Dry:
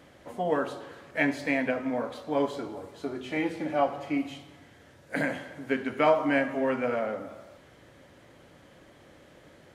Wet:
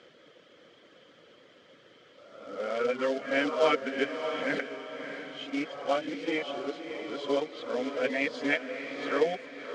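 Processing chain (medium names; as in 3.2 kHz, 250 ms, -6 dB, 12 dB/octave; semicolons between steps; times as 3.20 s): reverse the whole clip; reverb removal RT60 0.62 s; short-mantissa float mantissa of 2-bit; cabinet simulation 200–6600 Hz, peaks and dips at 470 Hz +8 dB, 850 Hz -6 dB, 1.3 kHz +6 dB, 2.2 kHz +3 dB, 3.2 kHz +10 dB, 4.9 kHz +4 dB; on a send: echo that smears into a reverb 632 ms, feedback 41%, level -8 dB; on the sum: trim -3.5 dB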